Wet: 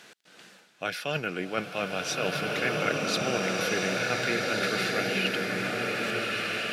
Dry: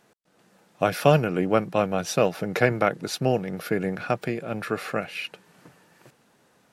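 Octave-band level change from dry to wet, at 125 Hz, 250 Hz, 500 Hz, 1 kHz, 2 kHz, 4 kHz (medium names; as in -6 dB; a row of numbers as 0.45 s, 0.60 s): -8.5 dB, -5.0 dB, -5.5 dB, -4.0 dB, +4.0 dB, +6.0 dB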